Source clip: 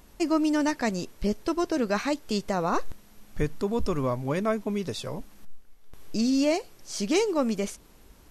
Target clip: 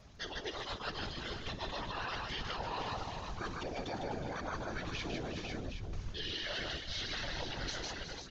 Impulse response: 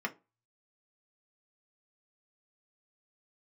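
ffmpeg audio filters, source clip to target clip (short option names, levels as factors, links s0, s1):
-af "aresample=22050,aresample=44100,afftfilt=real='re*lt(hypot(re,im),0.126)':imag='im*lt(hypot(re,im),0.126)':win_size=1024:overlap=0.75,aecho=1:1:6.5:0.61,dynaudnorm=f=340:g=9:m=4.22,asetrate=29433,aresample=44100,atempo=1.49831,alimiter=limit=0.133:level=0:latency=1:release=16,bandreject=f=50:t=h:w=6,bandreject=f=100:t=h:w=6,bandreject=f=150:t=h:w=6,bandreject=f=200:t=h:w=6,bandreject=f=250:t=h:w=6,bandreject=f=300:t=h:w=6,bandreject=f=350:t=h:w=6,bandreject=f=400:t=h:w=6,bandreject=f=450:t=h:w=6,bandreject=f=500:t=h:w=6,aecho=1:1:56|152|365|416|497|767:0.15|0.631|0.224|0.15|0.282|0.141,areverse,acompressor=threshold=0.0224:ratio=8,areverse,afftfilt=real='hypot(re,im)*cos(2*PI*random(0))':imag='hypot(re,im)*sin(2*PI*random(1))':win_size=512:overlap=0.75,volume=1.41"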